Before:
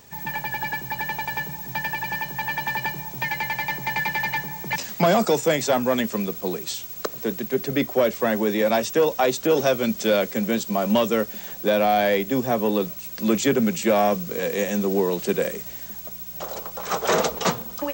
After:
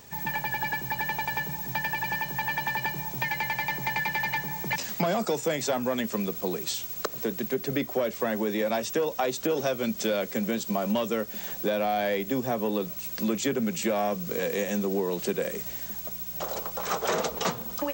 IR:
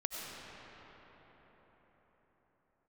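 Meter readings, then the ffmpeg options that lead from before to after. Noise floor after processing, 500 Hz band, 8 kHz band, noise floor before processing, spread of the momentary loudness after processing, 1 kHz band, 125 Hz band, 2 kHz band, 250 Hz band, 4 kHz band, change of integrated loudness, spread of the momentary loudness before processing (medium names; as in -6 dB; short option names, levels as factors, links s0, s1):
-39 dBFS, -6.5 dB, -4.0 dB, -38 dBFS, 4 LU, -5.5 dB, -4.5 dB, -3.5 dB, -5.5 dB, -4.5 dB, -5.0 dB, 9 LU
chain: -af "acompressor=threshold=0.0501:ratio=3"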